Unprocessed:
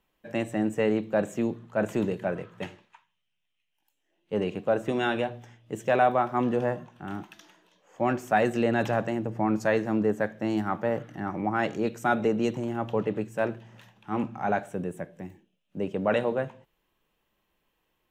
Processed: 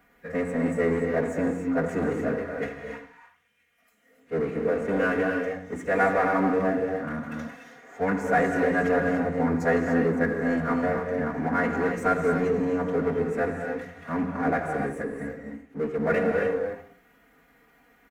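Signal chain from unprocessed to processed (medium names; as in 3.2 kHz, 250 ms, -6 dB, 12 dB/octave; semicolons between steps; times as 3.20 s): formant-preserving pitch shift -4.5 st; high-pass 62 Hz; peaking EQ 920 Hz -6 dB 0.49 oct; hum notches 60/120/180/240 Hz; comb 4.2 ms, depth 80%; speakerphone echo 80 ms, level -15 dB; power-law waveshaper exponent 0.7; resonant high shelf 2.4 kHz -6.5 dB, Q 3; gated-style reverb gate 320 ms rising, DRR 2.5 dB; trim -5 dB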